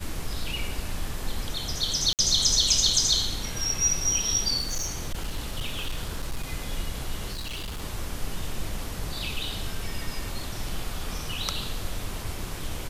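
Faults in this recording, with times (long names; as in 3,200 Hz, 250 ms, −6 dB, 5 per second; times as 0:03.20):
0:02.13–0:02.19: drop-out 58 ms
0:04.60–0:06.43: clipping −25 dBFS
0:07.32–0:07.82: clipping −30.5 dBFS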